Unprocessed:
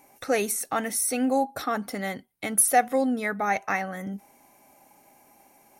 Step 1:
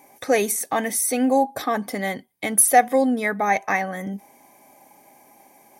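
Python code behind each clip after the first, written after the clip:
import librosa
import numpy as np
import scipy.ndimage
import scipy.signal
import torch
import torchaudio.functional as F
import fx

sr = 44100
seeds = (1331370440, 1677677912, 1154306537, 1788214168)

y = fx.notch_comb(x, sr, f0_hz=1400.0)
y = F.gain(torch.from_numpy(y), 5.5).numpy()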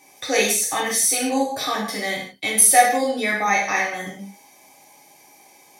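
y = fx.peak_eq(x, sr, hz=4400.0, db=13.5, octaves=2.1)
y = fx.rev_gated(y, sr, seeds[0], gate_ms=210, shape='falling', drr_db=-5.0)
y = F.gain(torch.from_numpy(y), -8.0).numpy()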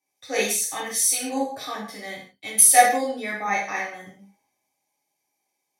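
y = fx.band_widen(x, sr, depth_pct=70)
y = F.gain(torch.from_numpy(y), -6.5).numpy()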